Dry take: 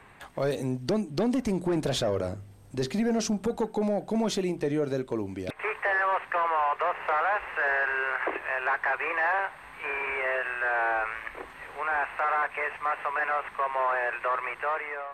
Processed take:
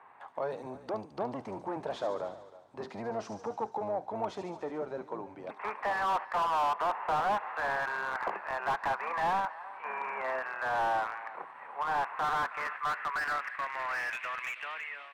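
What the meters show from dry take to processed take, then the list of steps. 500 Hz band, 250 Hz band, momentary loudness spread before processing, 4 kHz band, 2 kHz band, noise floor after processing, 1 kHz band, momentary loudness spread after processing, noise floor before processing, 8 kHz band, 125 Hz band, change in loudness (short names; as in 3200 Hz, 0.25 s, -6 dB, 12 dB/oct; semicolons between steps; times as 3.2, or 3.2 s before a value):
-6.5 dB, -14.0 dB, 7 LU, -7.0 dB, -7.5 dB, -53 dBFS, -2.0 dB, 10 LU, -48 dBFS, under -10 dB, -14.0 dB, -5.5 dB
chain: octaver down 1 oct, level +1 dB; HPF 100 Hz; in parallel at -8 dB: hard clip -23.5 dBFS, distortion -14 dB; on the sum: speakerphone echo 0.32 s, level -16 dB; band-pass sweep 910 Hz -> 3000 Hz, 11.93–14.74; on a send: thin delay 72 ms, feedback 70%, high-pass 5000 Hz, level -4 dB; on the sum: slew limiter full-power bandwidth 46 Hz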